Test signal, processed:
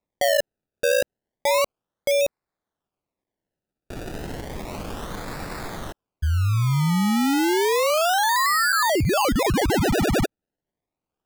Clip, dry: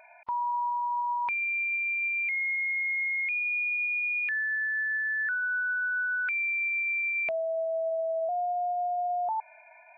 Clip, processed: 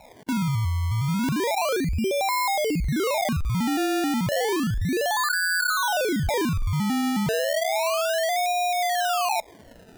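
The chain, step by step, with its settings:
sample-and-hold swept by an LFO 28×, swing 100% 0.32 Hz
level +5.5 dB

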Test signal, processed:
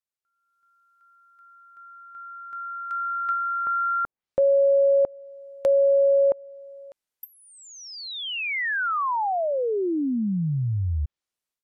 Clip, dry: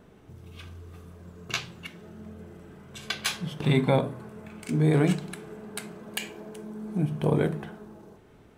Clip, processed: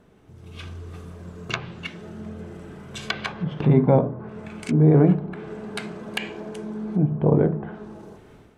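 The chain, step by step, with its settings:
treble cut that deepens with the level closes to 890 Hz, closed at −26.5 dBFS
automatic gain control gain up to 9.5 dB
level −2 dB

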